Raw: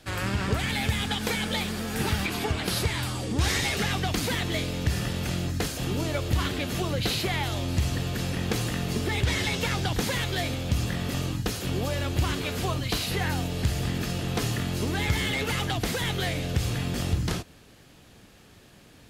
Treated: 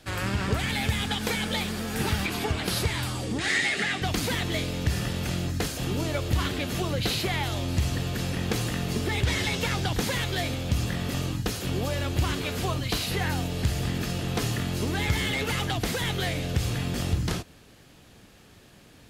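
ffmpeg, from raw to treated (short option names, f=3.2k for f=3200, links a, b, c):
-filter_complex "[0:a]asettb=1/sr,asplit=3[a][b][c];[a]atrim=end=3.384[d];[b]atrim=start=3.38:end=4.02,asetpts=PTS-STARTPTS,afade=t=in:d=0.004:c=qsin,afade=t=out:st=0.636:d=0.004:c=qsin,highpass=220,equalizer=f=500:t=q:w=4:g=-6,equalizer=f=1k:t=q:w=4:g=-9,equalizer=f=1.9k:t=q:w=4:g=9,equalizer=f=5.7k:t=q:w=4:g=-7,lowpass=f=9.2k:w=0.5412,lowpass=f=9.2k:w=1.3066[e];[c]atrim=start=4.016[f];[d][e]acrossfade=d=0.004:c1=hsin:c2=qsin[g];[g][f]acrossfade=d=0.004:c1=qsin:c2=hsin"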